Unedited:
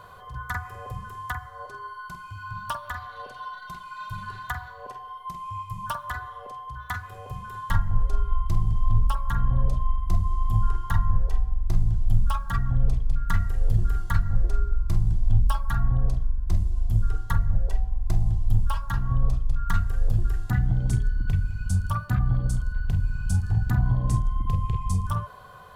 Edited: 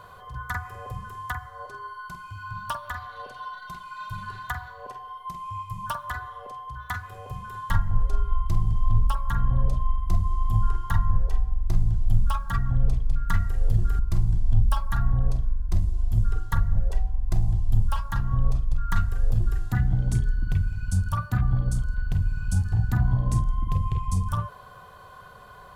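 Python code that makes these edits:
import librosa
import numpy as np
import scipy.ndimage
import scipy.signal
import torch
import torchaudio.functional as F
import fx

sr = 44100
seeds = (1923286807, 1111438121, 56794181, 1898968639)

y = fx.edit(x, sr, fx.cut(start_s=13.99, length_s=0.78), tone=tone)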